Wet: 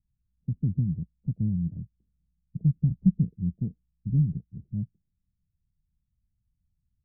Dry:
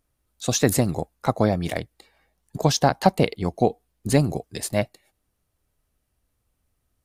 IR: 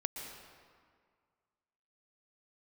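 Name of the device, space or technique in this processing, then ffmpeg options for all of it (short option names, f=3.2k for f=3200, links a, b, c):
the neighbour's flat through the wall: -filter_complex "[0:a]lowpass=f=180:w=0.5412,lowpass=f=180:w=1.3066,equalizer=f=180:t=o:w=0.66:g=5.5,asettb=1/sr,asplit=3[a][b][c];[a]atrim=end=2.634[d];[b]atrim=start=2.63:end=3.19,asetpts=PTS-STARTPTS,afade=t=in:d=0.004:c=qsin,afade=t=out:st=0.556:d=0.004:c=qsin,asubboost=boost=8:cutoff=250[e];[c]atrim=start=3.186[f];[d][e]acrossfade=d=0.004:c1=hsin:c2=qsin[g];[g][f]acrossfade=d=0.004:c1=qsin:c2=hsin,volume=-2.5dB"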